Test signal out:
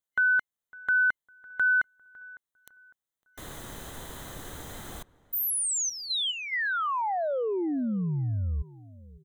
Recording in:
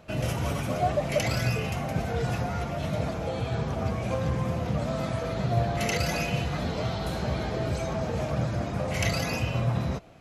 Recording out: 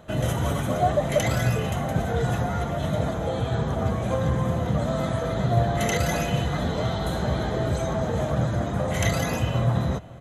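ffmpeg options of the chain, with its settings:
ffmpeg -i in.wav -filter_complex "[0:a]superequalizer=12b=0.398:14b=0.316,asplit=2[link_01][link_02];[link_02]adelay=555,lowpass=frequency=1800:poles=1,volume=-20.5dB,asplit=2[link_03][link_04];[link_04]adelay=555,lowpass=frequency=1800:poles=1,volume=0.39,asplit=2[link_05][link_06];[link_06]adelay=555,lowpass=frequency=1800:poles=1,volume=0.39[link_07];[link_01][link_03][link_05][link_07]amix=inputs=4:normalize=0,volume=4dB" out.wav

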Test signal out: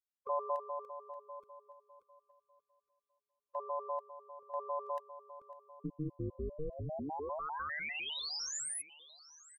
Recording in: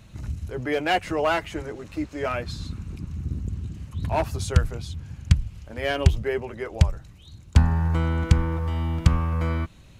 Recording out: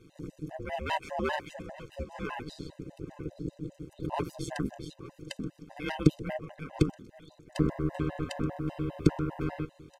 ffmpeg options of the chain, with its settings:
ffmpeg -i in.wav -filter_complex "[0:a]tremolo=f=150:d=0.71,asplit=2[link_01][link_02];[link_02]aecho=0:1:877|1754:0.119|0.025[link_03];[link_01][link_03]amix=inputs=2:normalize=0,aeval=exprs='val(0)*sin(2*PI*230*n/s)':channel_layout=same,afftfilt=real='re*gt(sin(2*PI*5*pts/sr)*(1-2*mod(floor(b*sr/1024/520),2)),0)':imag='im*gt(sin(2*PI*5*pts/sr)*(1-2*mod(floor(b*sr/1024/520),2)),0)':win_size=1024:overlap=0.75" out.wav

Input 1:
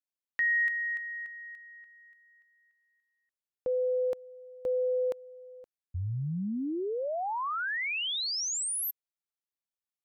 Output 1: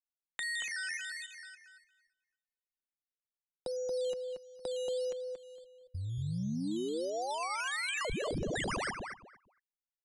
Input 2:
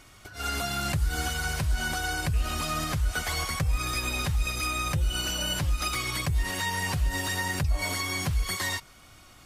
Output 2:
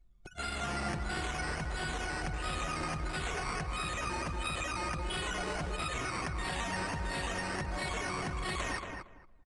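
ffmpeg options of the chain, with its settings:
ffmpeg -i in.wav -filter_complex "[0:a]anlmdn=1.58,equalizer=frequency=68:width_type=o:width=1:gain=-3,aecho=1:1:5.6:0.38,adynamicequalizer=threshold=0.00562:dfrequency=120:dqfactor=1.1:tfrequency=120:tqfactor=1.1:attack=5:release=100:ratio=0.375:range=3:mode=cutabove:tftype=bell,acrossover=split=260|2400[link_01][link_02][link_03];[link_01]acompressor=threshold=-35dB:ratio=8[link_04];[link_02]acompressor=threshold=-36dB:ratio=8[link_05];[link_03]acompressor=threshold=-36dB:ratio=1.5[link_06];[link_04][link_05][link_06]amix=inputs=3:normalize=0,asplit=2[link_07][link_08];[link_08]alimiter=level_in=3dB:limit=-24dB:level=0:latency=1:release=113,volume=-3dB,volume=-2.5dB[link_09];[link_07][link_09]amix=inputs=2:normalize=0,acompressor=threshold=-33dB:ratio=4:attack=13:release=32:knee=1:detection=rms,acrusher=samples=10:mix=1:aa=0.000001:lfo=1:lforange=6:lforate=1.5,asplit=2[link_10][link_11];[link_11]adelay=230,lowpass=frequency=2000:poles=1,volume=-4dB,asplit=2[link_12][link_13];[link_13]adelay=230,lowpass=frequency=2000:poles=1,volume=0.2,asplit=2[link_14][link_15];[link_15]adelay=230,lowpass=frequency=2000:poles=1,volume=0.2[link_16];[link_10][link_12][link_14][link_16]amix=inputs=4:normalize=0,aresample=22050,aresample=44100,volume=-3dB" out.wav

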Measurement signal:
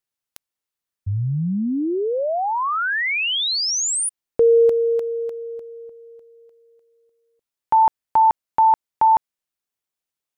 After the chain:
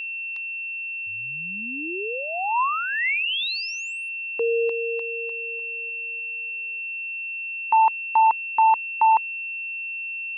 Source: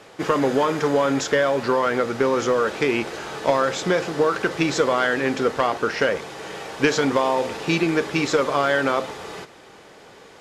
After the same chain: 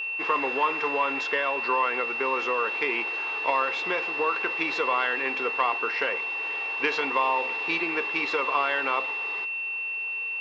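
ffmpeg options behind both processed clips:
ffmpeg -i in.wav -af "highpass=480,equalizer=frequency=600:width_type=q:width=4:gain=-8,equalizer=frequency=1000:width_type=q:width=4:gain=7,equalizer=frequency=1500:width_type=q:width=4:gain=-4,equalizer=frequency=2100:width_type=q:width=4:gain=4,lowpass=frequency=4200:width=0.5412,lowpass=frequency=4200:width=1.3066,aeval=exprs='val(0)+0.0631*sin(2*PI*2700*n/s)':channel_layout=same,volume=-4.5dB" out.wav

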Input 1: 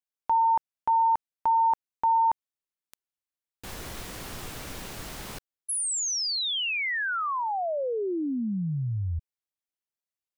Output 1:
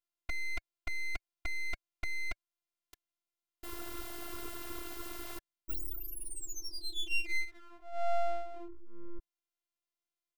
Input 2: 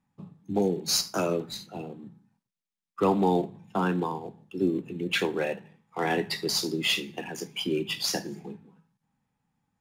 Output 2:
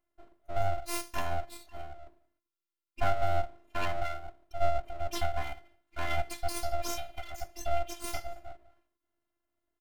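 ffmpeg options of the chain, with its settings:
ffmpeg -i in.wav -af "equalizer=frequency=1800:width=0.77:gain=-6,afftfilt=real='hypot(re,im)*cos(PI*b)':imag='0':win_size=512:overlap=0.75,firequalizer=gain_entry='entry(170,0);entry(510,9);entry(720,-25);entry(1100,12);entry(2400,0);entry(6200,-6);entry(13000,3)':delay=0.05:min_phase=1,aeval=exprs='abs(val(0))':channel_layout=same,bandreject=frequency=1700:width=16" out.wav

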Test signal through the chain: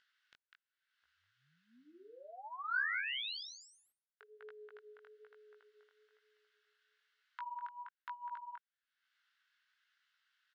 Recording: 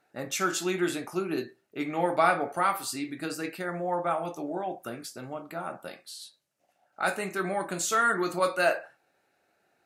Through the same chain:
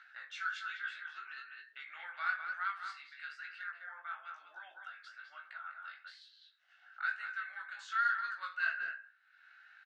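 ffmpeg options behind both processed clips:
ffmpeg -i in.wav -filter_complex "[0:a]highpass=frequency=1500:width_type=q:width=6,aeval=exprs='0.75*(cos(1*acos(clip(val(0)/0.75,-1,1)))-cos(1*PI/2))+0.0188*(cos(5*acos(clip(val(0)/0.75,-1,1)))-cos(5*PI/2))':channel_layout=same,aderivative,asplit=2[link_01][link_02];[link_02]adelay=200,highpass=300,lowpass=3400,asoftclip=type=hard:threshold=-23.5dB,volume=-6dB[link_03];[link_01][link_03]amix=inputs=2:normalize=0,acompressor=mode=upward:threshold=-35dB:ratio=2.5,flanger=delay=16:depth=6.1:speed=1.1,lowpass=frequency=3600:width=0.5412,lowpass=frequency=3600:width=1.3066,bandreject=frequency=2400:width=11,volume=-2.5dB" out.wav

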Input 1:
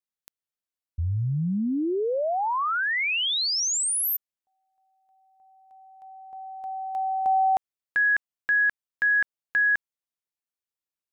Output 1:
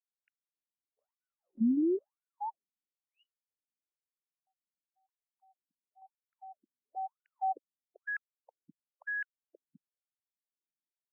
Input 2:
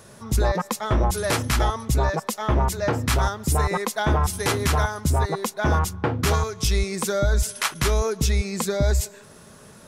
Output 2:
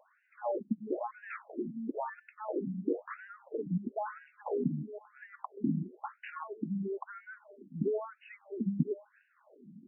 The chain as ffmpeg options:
ffmpeg -i in.wav -af "tiltshelf=frequency=630:gain=9.5,afftfilt=real='re*between(b*sr/1024,210*pow(2100/210,0.5+0.5*sin(2*PI*1*pts/sr))/1.41,210*pow(2100/210,0.5+0.5*sin(2*PI*1*pts/sr))*1.41)':imag='im*between(b*sr/1024,210*pow(2100/210,0.5+0.5*sin(2*PI*1*pts/sr))/1.41,210*pow(2100/210,0.5+0.5*sin(2*PI*1*pts/sr))*1.41)':win_size=1024:overlap=0.75,volume=-6.5dB" out.wav

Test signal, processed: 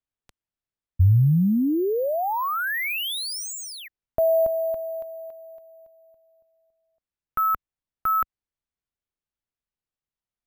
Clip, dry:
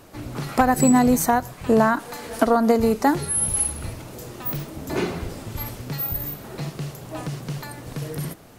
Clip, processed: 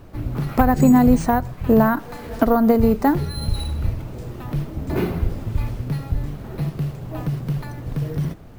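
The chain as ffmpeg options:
ffmpeg -i in.wav -af "aemphasis=mode=reproduction:type=bsi,acrusher=samples=3:mix=1:aa=0.000001,volume=-1dB" out.wav

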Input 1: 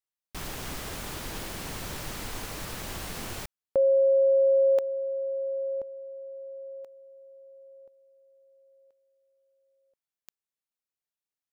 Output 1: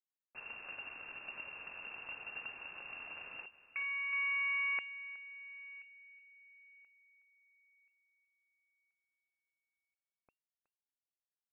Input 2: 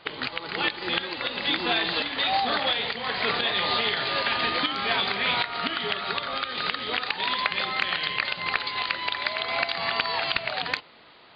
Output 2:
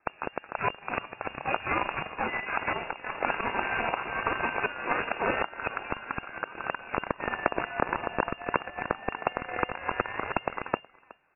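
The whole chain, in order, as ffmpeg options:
ffmpeg -i in.wav -filter_complex "[0:a]asplit=2[link_01][link_02];[link_02]acrusher=bits=5:mode=log:mix=0:aa=0.000001,volume=-10dB[link_03];[link_01][link_03]amix=inputs=2:normalize=0,equalizer=frequency=520:width=0.66:gain=-11.5,asplit=2[link_04][link_05];[link_05]aecho=0:1:369:0.237[link_06];[link_04][link_06]amix=inputs=2:normalize=0,afreqshift=19,aeval=exprs='0.376*(cos(1*acos(clip(val(0)/0.376,-1,1)))-cos(1*PI/2))+0.15*(cos(5*acos(clip(val(0)/0.376,-1,1)))-cos(5*PI/2))+0.0119*(cos(6*acos(clip(val(0)/0.376,-1,1)))-cos(6*PI/2))+0.15*(cos(7*acos(clip(val(0)/0.376,-1,1)))-cos(7*PI/2))':channel_layout=same,lowpass=frequency=2400:width_type=q:width=0.5098,lowpass=frequency=2400:width_type=q:width=0.6013,lowpass=frequency=2400:width_type=q:width=0.9,lowpass=frequency=2400:width_type=q:width=2.563,afreqshift=-2800,bandreject=frequency=1900:width=16" out.wav

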